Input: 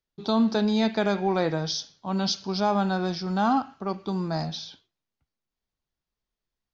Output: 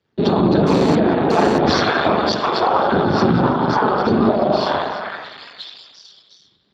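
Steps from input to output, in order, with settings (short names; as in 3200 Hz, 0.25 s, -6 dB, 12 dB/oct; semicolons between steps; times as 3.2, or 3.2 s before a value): air absorption 280 m; delay with a stepping band-pass 0.355 s, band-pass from 1200 Hz, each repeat 0.7 oct, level -3 dB; whisperiser; 4.26–4.66 bell 640 Hz +14.5 dB 0.83 oct; compressor 20:1, threshold -33 dBFS, peak gain reduction 19 dB; 2.11–2.92 HPF 420 Hz 24 dB/oct; 5.69–6.06 spectral delete 1300–4700 Hz; spring tank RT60 1.4 s, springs 40 ms, chirp 60 ms, DRR -0.5 dB; 0.67–1.58 GSM buzz -43 dBFS; maximiser +28 dB; gain -3 dB; Speex 8 kbps 32000 Hz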